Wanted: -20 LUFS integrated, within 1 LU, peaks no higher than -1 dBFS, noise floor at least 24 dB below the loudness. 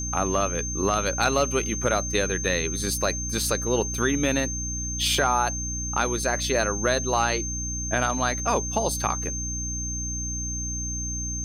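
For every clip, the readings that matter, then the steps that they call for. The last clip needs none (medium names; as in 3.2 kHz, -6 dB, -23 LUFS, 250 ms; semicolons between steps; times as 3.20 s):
hum 60 Hz; highest harmonic 300 Hz; hum level -30 dBFS; steady tone 6.3 kHz; tone level -30 dBFS; loudness -25.0 LUFS; peak level -10.0 dBFS; loudness target -20.0 LUFS
-> de-hum 60 Hz, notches 5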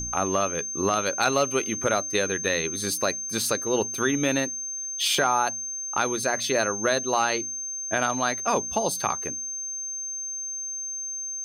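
hum not found; steady tone 6.3 kHz; tone level -30 dBFS
-> band-stop 6.3 kHz, Q 30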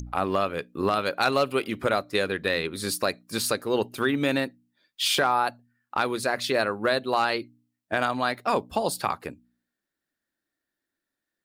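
steady tone not found; loudness -26.5 LUFS; peak level -11.0 dBFS; loudness target -20.0 LUFS
-> trim +6.5 dB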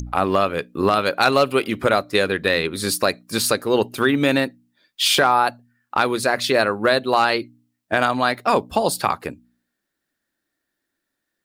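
loudness -20.0 LUFS; peak level -4.5 dBFS; noise floor -79 dBFS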